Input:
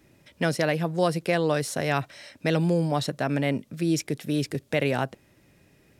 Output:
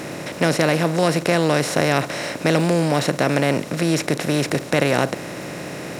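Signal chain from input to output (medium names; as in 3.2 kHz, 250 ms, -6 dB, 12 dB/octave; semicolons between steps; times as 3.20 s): spectral levelling over time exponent 0.4; crackle 92 per s -33 dBFS; trim +1.5 dB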